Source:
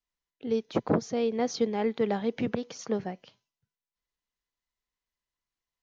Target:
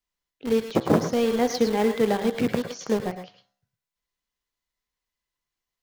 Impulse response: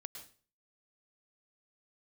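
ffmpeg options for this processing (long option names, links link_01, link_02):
-filter_complex "[0:a]bandreject=frequency=65.87:width_type=h:width=4,bandreject=frequency=131.74:width_type=h:width=4,bandreject=frequency=197.61:width_type=h:width=4,bandreject=frequency=263.48:width_type=h:width=4,bandreject=frequency=329.35:width_type=h:width=4,bandreject=frequency=395.22:width_type=h:width=4,bandreject=frequency=461.09:width_type=h:width=4,bandreject=frequency=526.96:width_type=h:width=4,bandreject=frequency=592.83:width_type=h:width=4,bandreject=frequency=658.7:width_type=h:width=4,bandreject=frequency=724.57:width_type=h:width=4,bandreject=frequency=790.44:width_type=h:width=4,bandreject=frequency=856.31:width_type=h:width=4,bandreject=frequency=922.18:width_type=h:width=4,bandreject=frequency=988.05:width_type=h:width=4,bandreject=frequency=1053.92:width_type=h:width=4,bandreject=frequency=1119.79:width_type=h:width=4,bandreject=frequency=1185.66:width_type=h:width=4,bandreject=frequency=1251.53:width_type=h:width=4,bandreject=frequency=1317.4:width_type=h:width=4,bandreject=frequency=1383.27:width_type=h:width=4,bandreject=frequency=1449.14:width_type=h:width=4,bandreject=frequency=1515.01:width_type=h:width=4,bandreject=frequency=1580.88:width_type=h:width=4,bandreject=frequency=1646.75:width_type=h:width=4,bandreject=frequency=1712.62:width_type=h:width=4,bandreject=frequency=1778.49:width_type=h:width=4,bandreject=frequency=1844.36:width_type=h:width=4,bandreject=frequency=1910.23:width_type=h:width=4,asplit=2[link_01][link_02];[link_02]acrusher=bits=4:mix=0:aa=0.000001,volume=-8.5dB[link_03];[link_01][link_03]amix=inputs=2:normalize=0[link_04];[1:a]atrim=start_sample=2205,afade=type=out:start_time=0.17:duration=0.01,atrim=end_sample=7938[link_05];[link_04][link_05]afir=irnorm=-1:irlink=0,volume=8.5dB"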